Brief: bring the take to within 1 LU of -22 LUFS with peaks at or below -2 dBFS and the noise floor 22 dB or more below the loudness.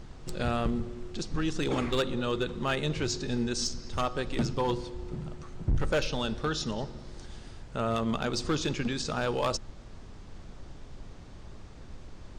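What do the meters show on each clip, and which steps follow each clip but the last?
clipped 1.2%; flat tops at -21.5 dBFS; noise floor -46 dBFS; noise floor target -54 dBFS; loudness -31.5 LUFS; peak -21.5 dBFS; loudness target -22.0 LUFS
-> clip repair -21.5 dBFS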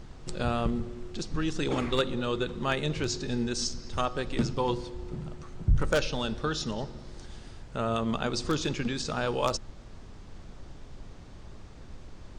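clipped 0.0%; noise floor -46 dBFS; noise floor target -53 dBFS
-> noise print and reduce 7 dB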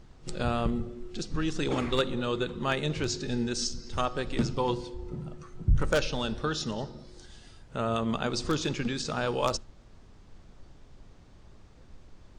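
noise floor -53 dBFS; loudness -31.0 LUFS; peak -12.5 dBFS; loudness target -22.0 LUFS
-> gain +9 dB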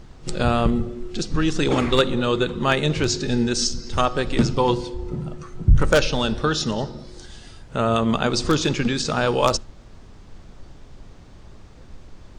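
loudness -22.0 LUFS; peak -3.5 dBFS; noise floor -44 dBFS

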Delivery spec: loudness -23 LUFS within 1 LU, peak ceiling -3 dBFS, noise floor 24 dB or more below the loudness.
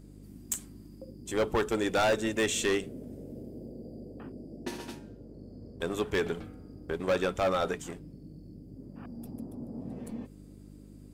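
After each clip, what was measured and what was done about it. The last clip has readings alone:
clipped 1.3%; flat tops at -22.0 dBFS; hum 50 Hz; harmonics up to 300 Hz; hum level -49 dBFS; loudness -32.0 LUFS; peak -22.0 dBFS; loudness target -23.0 LUFS
-> clip repair -22 dBFS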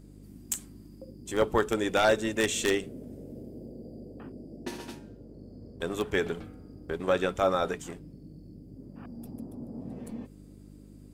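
clipped 0.0%; hum 50 Hz; harmonics up to 250 Hz; hum level -49 dBFS
-> de-hum 50 Hz, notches 5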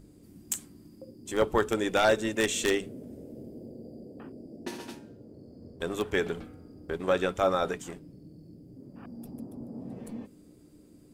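hum none; loudness -30.0 LUFS; peak -12.5 dBFS; loudness target -23.0 LUFS
-> gain +7 dB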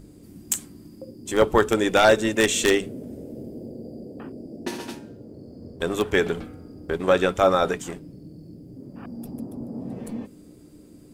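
loudness -23.0 LUFS; peak -5.5 dBFS; noise floor -48 dBFS

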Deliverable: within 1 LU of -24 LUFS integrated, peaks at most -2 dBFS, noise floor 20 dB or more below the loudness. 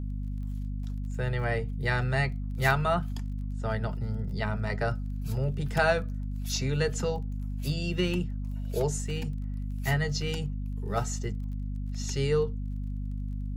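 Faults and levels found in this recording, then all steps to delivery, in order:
ticks 20/s; hum 50 Hz; harmonics up to 250 Hz; hum level -30 dBFS; loudness -31.0 LUFS; peak -11.0 dBFS; loudness target -24.0 LUFS
-> de-click; notches 50/100/150/200/250 Hz; gain +7 dB

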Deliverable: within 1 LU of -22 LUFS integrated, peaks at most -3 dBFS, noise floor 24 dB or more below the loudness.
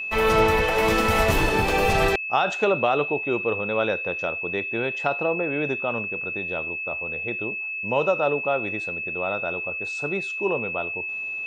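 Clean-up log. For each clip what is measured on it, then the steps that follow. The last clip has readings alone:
steady tone 2600 Hz; tone level -28 dBFS; loudness -23.5 LUFS; peak -8.0 dBFS; loudness target -22.0 LUFS
-> notch 2600 Hz, Q 30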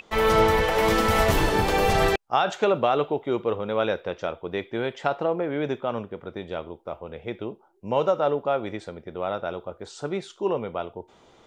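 steady tone none; loudness -25.0 LUFS; peak -9.0 dBFS; loudness target -22.0 LUFS
-> gain +3 dB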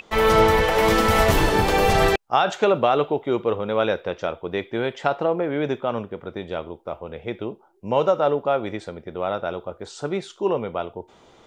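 loudness -22.0 LUFS; peak -6.0 dBFS; noise floor -54 dBFS

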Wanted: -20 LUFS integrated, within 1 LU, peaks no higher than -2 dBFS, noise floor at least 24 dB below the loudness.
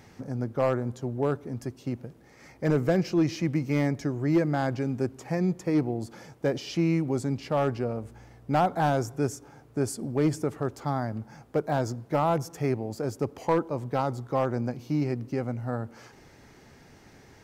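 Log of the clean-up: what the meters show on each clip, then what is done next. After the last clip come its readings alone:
clipped 0.4%; flat tops at -16.0 dBFS; loudness -28.5 LUFS; peak -16.0 dBFS; loudness target -20.0 LUFS
-> clip repair -16 dBFS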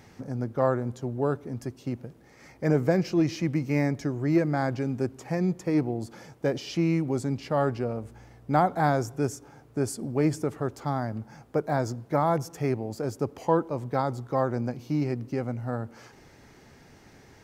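clipped 0.0%; loudness -28.5 LUFS; peak -8.5 dBFS; loudness target -20.0 LUFS
-> gain +8.5 dB; limiter -2 dBFS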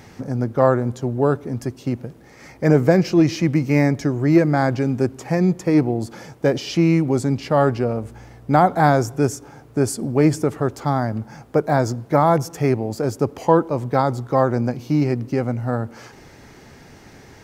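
loudness -20.0 LUFS; peak -2.0 dBFS; noise floor -46 dBFS

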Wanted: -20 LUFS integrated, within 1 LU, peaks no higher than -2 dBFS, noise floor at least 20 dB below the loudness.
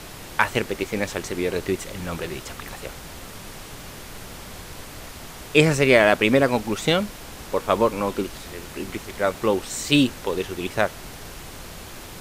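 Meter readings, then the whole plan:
noise floor -40 dBFS; noise floor target -43 dBFS; loudness -22.5 LUFS; peak -2.0 dBFS; loudness target -20.0 LUFS
-> noise print and reduce 6 dB; gain +2.5 dB; limiter -2 dBFS

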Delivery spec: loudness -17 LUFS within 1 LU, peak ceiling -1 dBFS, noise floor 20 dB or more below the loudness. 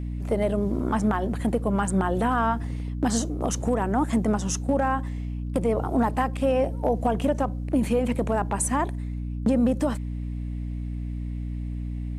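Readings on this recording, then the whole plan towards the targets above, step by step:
hum 60 Hz; harmonics up to 300 Hz; hum level -28 dBFS; loudness -26.0 LUFS; peak -12.5 dBFS; loudness target -17.0 LUFS
-> notches 60/120/180/240/300 Hz; gain +9 dB

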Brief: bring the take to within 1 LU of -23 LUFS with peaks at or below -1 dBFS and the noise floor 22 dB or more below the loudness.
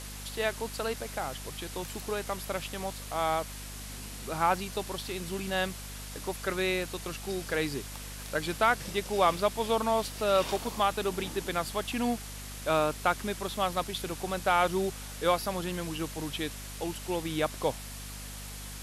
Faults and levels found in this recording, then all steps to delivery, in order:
hum 50 Hz; harmonics up to 250 Hz; hum level -42 dBFS; noise floor -42 dBFS; noise floor target -54 dBFS; loudness -31.5 LUFS; peak -12.0 dBFS; loudness target -23.0 LUFS
-> de-hum 50 Hz, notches 5; denoiser 12 dB, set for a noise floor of -42 dBFS; gain +8.5 dB

